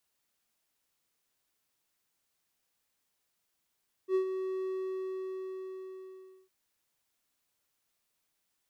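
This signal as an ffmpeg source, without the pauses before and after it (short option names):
-f lavfi -i "aevalsrc='0.0841*(1-4*abs(mod(377*t+0.25,1)-0.5))':d=2.41:s=44100,afade=t=in:d=0.069,afade=t=out:st=0.069:d=0.097:silence=0.376,afade=t=out:st=0.57:d=1.84"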